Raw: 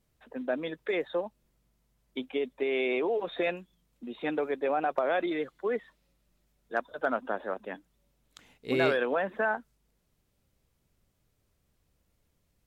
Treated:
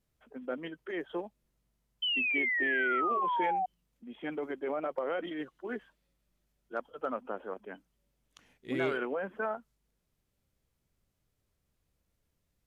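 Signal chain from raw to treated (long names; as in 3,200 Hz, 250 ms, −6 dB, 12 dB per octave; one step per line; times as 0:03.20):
formants moved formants −2 semitones
sound drawn into the spectrogram fall, 0:02.02–0:03.66, 730–3,100 Hz −25 dBFS
level −5.5 dB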